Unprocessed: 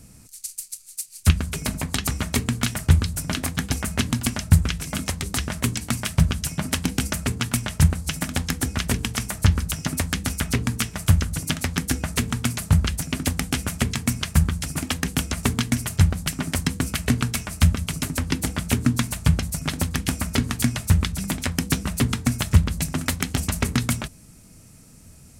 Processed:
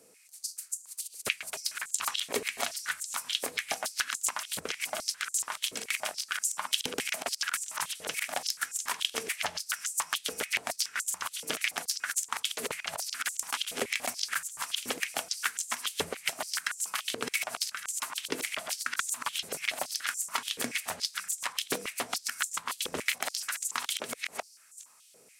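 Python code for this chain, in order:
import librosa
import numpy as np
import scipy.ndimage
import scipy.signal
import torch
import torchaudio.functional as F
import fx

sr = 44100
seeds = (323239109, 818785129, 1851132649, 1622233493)

y = fx.reverse_delay(x, sr, ms=414, wet_db=-4.0)
y = fx.filter_held_highpass(y, sr, hz=7.0, low_hz=460.0, high_hz=7200.0)
y = y * 10.0 ** (-8.0 / 20.0)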